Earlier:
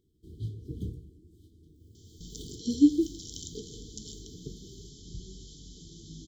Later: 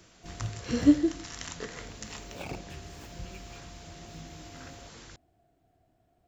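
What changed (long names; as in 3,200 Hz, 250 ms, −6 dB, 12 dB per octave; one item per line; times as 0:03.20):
speech: entry −1.95 s
master: remove linear-phase brick-wall band-stop 470–3,000 Hz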